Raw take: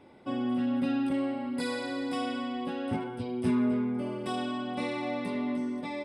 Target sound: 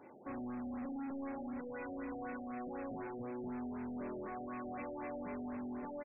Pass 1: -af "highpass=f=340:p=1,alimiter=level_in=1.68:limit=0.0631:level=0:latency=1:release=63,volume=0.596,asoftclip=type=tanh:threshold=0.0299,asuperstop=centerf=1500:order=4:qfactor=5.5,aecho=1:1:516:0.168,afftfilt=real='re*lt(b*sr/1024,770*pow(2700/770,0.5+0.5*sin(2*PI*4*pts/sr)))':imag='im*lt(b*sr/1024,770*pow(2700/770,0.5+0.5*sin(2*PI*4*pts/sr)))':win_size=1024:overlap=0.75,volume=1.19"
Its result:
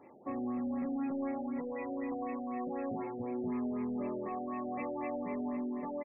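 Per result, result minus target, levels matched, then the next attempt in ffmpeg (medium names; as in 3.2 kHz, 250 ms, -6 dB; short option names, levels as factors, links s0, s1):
saturation: distortion -12 dB; 2 kHz band -5.5 dB
-af "highpass=f=340:p=1,alimiter=level_in=1.68:limit=0.0631:level=0:latency=1:release=63,volume=0.596,asoftclip=type=tanh:threshold=0.00794,asuperstop=centerf=1500:order=4:qfactor=5.5,aecho=1:1:516:0.168,afftfilt=real='re*lt(b*sr/1024,770*pow(2700/770,0.5+0.5*sin(2*PI*4*pts/sr)))':imag='im*lt(b*sr/1024,770*pow(2700/770,0.5+0.5*sin(2*PI*4*pts/sr)))':win_size=1024:overlap=0.75,volume=1.19"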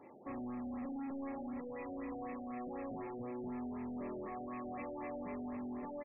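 2 kHz band -3.0 dB
-af "highpass=f=340:p=1,alimiter=level_in=1.68:limit=0.0631:level=0:latency=1:release=63,volume=0.596,asoftclip=type=tanh:threshold=0.00794,asuperstop=centerf=4200:order=4:qfactor=5.5,aecho=1:1:516:0.168,afftfilt=real='re*lt(b*sr/1024,770*pow(2700/770,0.5+0.5*sin(2*PI*4*pts/sr)))':imag='im*lt(b*sr/1024,770*pow(2700/770,0.5+0.5*sin(2*PI*4*pts/sr)))':win_size=1024:overlap=0.75,volume=1.19"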